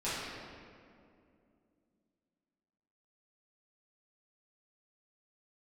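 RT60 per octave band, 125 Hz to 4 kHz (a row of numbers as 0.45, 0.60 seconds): 2.9, 3.5, 2.7, 2.1, 1.8, 1.4 seconds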